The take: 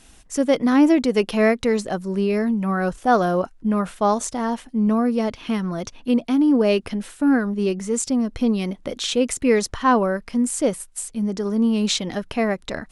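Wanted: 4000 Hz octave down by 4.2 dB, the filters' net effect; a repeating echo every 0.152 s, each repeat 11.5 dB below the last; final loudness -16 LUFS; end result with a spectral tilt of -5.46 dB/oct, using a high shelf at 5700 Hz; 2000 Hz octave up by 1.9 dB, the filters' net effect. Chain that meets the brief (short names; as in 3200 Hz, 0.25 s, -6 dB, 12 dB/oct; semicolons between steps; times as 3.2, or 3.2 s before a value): bell 2000 Hz +4 dB; bell 4000 Hz -5.5 dB; high shelf 5700 Hz -3.5 dB; feedback echo 0.152 s, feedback 27%, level -11.5 dB; gain +5 dB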